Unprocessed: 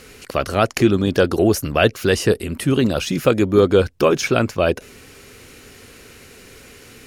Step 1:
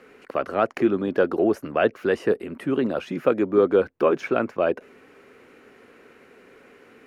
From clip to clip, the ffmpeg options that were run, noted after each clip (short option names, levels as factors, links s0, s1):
-filter_complex "[0:a]acrossover=split=200 2200:gain=0.0891 1 0.0891[s0][s1][s2];[s0][s1][s2]amix=inputs=3:normalize=0,volume=0.668"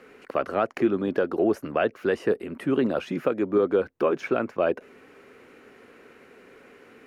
-af "alimiter=limit=0.251:level=0:latency=1:release=326"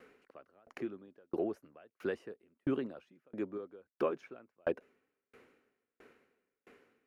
-af "aeval=exprs='val(0)*pow(10,-40*if(lt(mod(1.5*n/s,1),2*abs(1.5)/1000),1-mod(1.5*n/s,1)/(2*abs(1.5)/1000),(mod(1.5*n/s,1)-2*abs(1.5)/1000)/(1-2*abs(1.5)/1000))/20)':c=same,volume=0.501"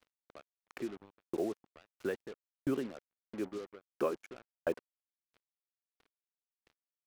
-af "acrusher=bits=7:mix=0:aa=0.5"